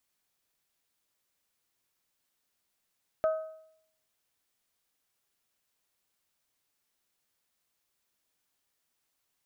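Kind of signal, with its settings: metal hit bell, lowest mode 635 Hz, modes 3, decay 0.71 s, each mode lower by 11 dB, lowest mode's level -21.5 dB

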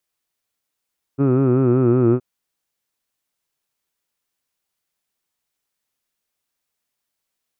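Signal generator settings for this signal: formant vowel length 1.02 s, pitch 134 Hz, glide -2 st, F1 340 Hz, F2 1.3 kHz, F3 2.5 kHz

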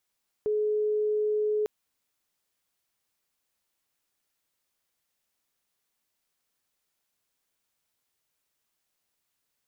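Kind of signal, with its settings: tone sine 424 Hz -23.5 dBFS 1.20 s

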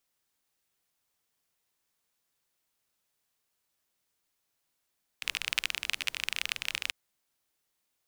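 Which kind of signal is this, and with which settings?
rain from filtered ticks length 1.69 s, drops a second 28, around 2.6 kHz, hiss -21.5 dB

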